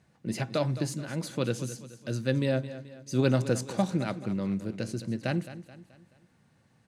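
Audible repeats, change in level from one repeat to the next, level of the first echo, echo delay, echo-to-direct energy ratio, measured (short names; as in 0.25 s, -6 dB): 4, -7.0 dB, -14.0 dB, 0.215 s, -13.0 dB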